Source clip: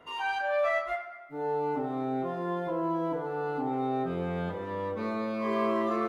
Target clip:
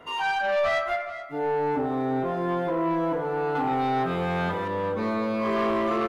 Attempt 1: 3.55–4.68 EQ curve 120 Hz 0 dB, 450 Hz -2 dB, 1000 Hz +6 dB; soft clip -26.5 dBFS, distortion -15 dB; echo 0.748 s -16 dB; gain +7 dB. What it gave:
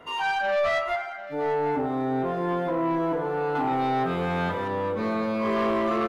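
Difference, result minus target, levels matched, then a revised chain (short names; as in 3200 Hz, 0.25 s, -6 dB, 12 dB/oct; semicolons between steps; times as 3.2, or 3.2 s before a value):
echo 0.319 s late
3.55–4.68 EQ curve 120 Hz 0 dB, 450 Hz -2 dB, 1000 Hz +6 dB; soft clip -26.5 dBFS, distortion -15 dB; echo 0.429 s -16 dB; gain +7 dB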